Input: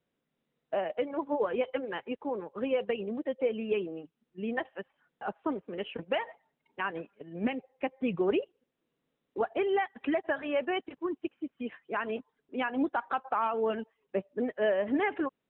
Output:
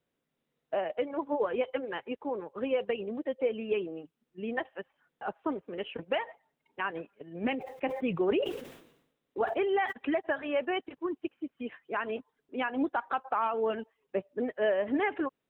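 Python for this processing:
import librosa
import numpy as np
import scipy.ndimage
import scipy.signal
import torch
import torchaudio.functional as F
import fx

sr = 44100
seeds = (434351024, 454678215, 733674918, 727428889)

y = fx.peak_eq(x, sr, hz=200.0, db=-3.5, octaves=0.5)
y = fx.sustainer(y, sr, db_per_s=72.0, at=(7.4, 9.91), fade=0.02)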